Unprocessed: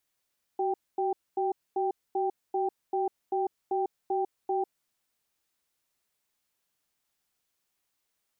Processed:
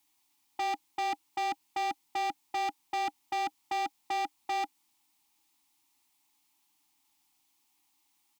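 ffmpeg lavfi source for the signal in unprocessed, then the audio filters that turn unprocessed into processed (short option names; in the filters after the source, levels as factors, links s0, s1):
-f lavfi -i "aevalsrc='0.0398*(sin(2*PI*377*t)+sin(2*PI*785*t))*clip(min(mod(t,0.39),0.15-mod(t,0.39))/0.005,0,1)':d=4.05:s=44100"
-filter_complex "[0:a]firequalizer=gain_entry='entry(190,0);entry(300,13);entry(530,-22);entry(810,14);entry(1500,-4);entry(2200,7)':delay=0.05:min_phase=1,acrossover=split=150[s0][s1];[s1]asoftclip=type=hard:threshold=0.0316[s2];[s0][s2]amix=inputs=2:normalize=0"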